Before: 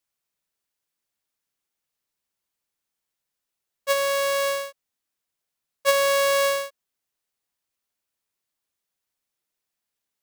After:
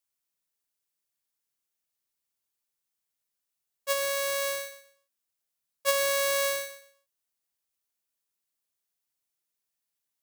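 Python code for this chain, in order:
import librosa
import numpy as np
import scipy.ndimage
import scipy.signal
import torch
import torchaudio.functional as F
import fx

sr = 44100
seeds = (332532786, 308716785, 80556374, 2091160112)

y = fx.high_shelf(x, sr, hz=5100.0, db=7.5)
y = fx.echo_feedback(y, sr, ms=121, feedback_pct=24, wet_db=-11.0)
y = F.gain(torch.from_numpy(y), -7.0).numpy()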